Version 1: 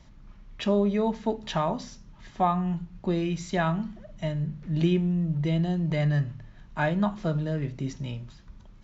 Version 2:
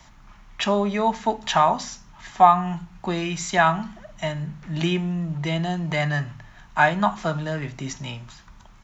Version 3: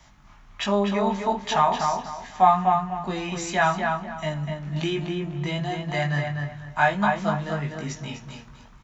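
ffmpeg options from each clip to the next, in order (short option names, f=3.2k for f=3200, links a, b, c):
-filter_complex "[0:a]firequalizer=gain_entry='entry(530,0);entry(750,12);entry(4400,8);entry(6800,14)':delay=0.05:min_phase=1,acrossover=split=120|1600[a][b][c];[a]asoftclip=type=tanh:threshold=-38.5dB[d];[d][b][c]amix=inputs=3:normalize=0"
-filter_complex "[0:a]flanger=delay=19.5:depth=2.1:speed=1.4,asplit=2[a][b];[b]adelay=248,lowpass=f=3k:p=1,volume=-4dB,asplit=2[c][d];[d]adelay=248,lowpass=f=3k:p=1,volume=0.29,asplit=2[e][f];[f]adelay=248,lowpass=f=3k:p=1,volume=0.29,asplit=2[g][h];[h]adelay=248,lowpass=f=3k:p=1,volume=0.29[i];[a][c][e][g][i]amix=inputs=5:normalize=0"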